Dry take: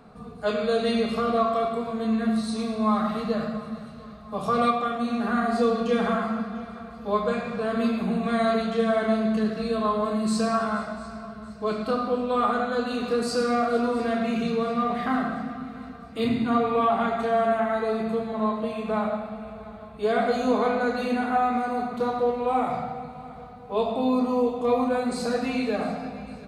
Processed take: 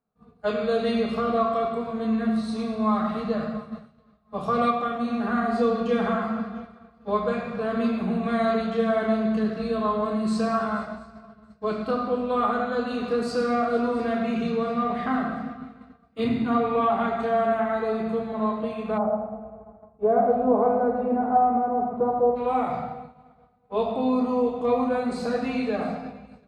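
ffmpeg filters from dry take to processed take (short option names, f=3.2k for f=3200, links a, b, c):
-filter_complex "[0:a]asplit=3[a][b][c];[a]afade=t=out:st=18.97:d=0.02[d];[b]lowpass=f=770:t=q:w=1.6,afade=t=in:st=18.97:d=0.02,afade=t=out:st=22.35:d=0.02[e];[c]afade=t=in:st=22.35:d=0.02[f];[d][e][f]amix=inputs=3:normalize=0,highshelf=f=5.4k:g=-11.5,agate=range=-33dB:threshold=-30dB:ratio=3:detection=peak"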